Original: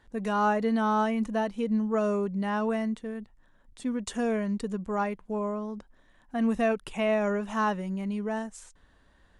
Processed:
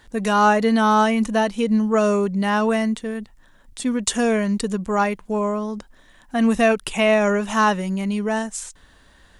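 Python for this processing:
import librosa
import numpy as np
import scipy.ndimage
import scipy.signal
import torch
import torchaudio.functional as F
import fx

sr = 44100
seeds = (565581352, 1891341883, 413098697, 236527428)

y = fx.high_shelf(x, sr, hz=2400.0, db=9.5)
y = y * 10.0 ** (8.0 / 20.0)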